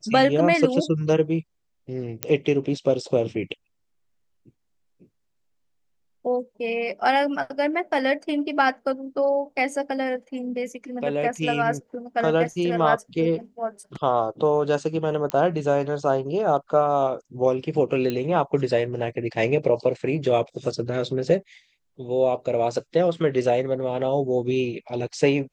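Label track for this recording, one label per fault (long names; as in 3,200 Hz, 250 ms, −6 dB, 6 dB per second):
2.230000	2.230000	click −5 dBFS
15.300000	15.300000	click −12 dBFS
18.100000	18.100000	click −14 dBFS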